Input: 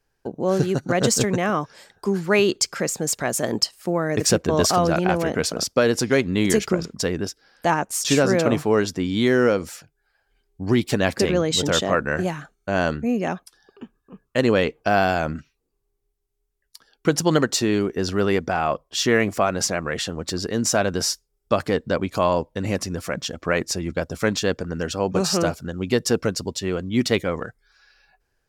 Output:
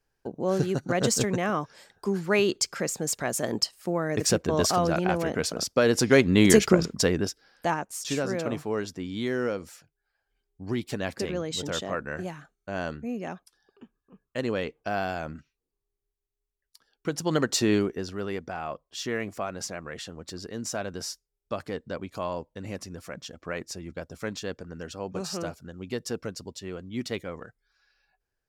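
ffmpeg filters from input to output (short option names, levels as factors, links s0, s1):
-af "volume=3.55,afade=t=in:st=5.72:d=0.6:silence=0.446684,afade=t=out:st=6.85:d=1.03:silence=0.237137,afade=t=in:st=17.18:d=0.55:silence=0.354813,afade=t=out:st=17.73:d=0.34:silence=0.298538"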